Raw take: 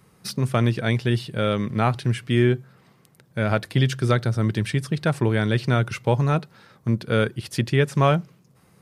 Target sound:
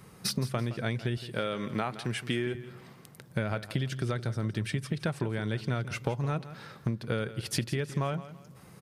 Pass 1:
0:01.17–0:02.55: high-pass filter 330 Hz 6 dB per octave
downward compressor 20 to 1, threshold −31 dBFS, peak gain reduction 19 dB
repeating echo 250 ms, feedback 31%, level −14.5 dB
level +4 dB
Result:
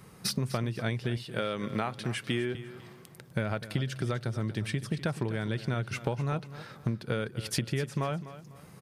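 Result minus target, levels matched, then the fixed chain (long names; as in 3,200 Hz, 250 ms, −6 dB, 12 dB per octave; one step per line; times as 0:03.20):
echo 83 ms late
0:01.17–0:02.55: high-pass filter 330 Hz 6 dB per octave
downward compressor 20 to 1, threshold −31 dBFS, peak gain reduction 19 dB
repeating echo 167 ms, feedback 31%, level −14.5 dB
level +4 dB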